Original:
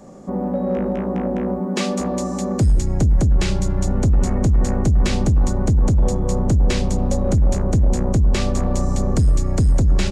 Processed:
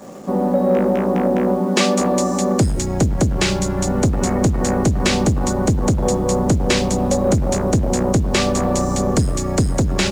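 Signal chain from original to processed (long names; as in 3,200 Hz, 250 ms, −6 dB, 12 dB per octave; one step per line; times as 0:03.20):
high-pass filter 260 Hz 6 dB per octave
in parallel at −11 dB: bit reduction 7 bits
on the sum: level +5.5 dB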